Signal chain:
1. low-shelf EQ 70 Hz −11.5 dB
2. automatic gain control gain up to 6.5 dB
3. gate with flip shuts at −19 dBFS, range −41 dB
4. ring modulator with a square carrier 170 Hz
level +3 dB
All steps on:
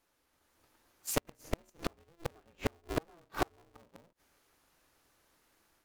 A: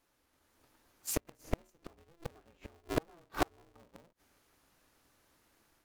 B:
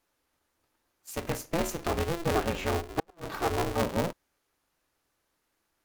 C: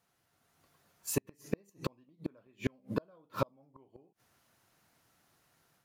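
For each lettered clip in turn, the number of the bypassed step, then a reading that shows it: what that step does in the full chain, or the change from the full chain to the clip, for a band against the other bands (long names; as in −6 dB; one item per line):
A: 1, 4 kHz band −1.5 dB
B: 2, change in crest factor −10.0 dB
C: 4, 4 kHz band −5.0 dB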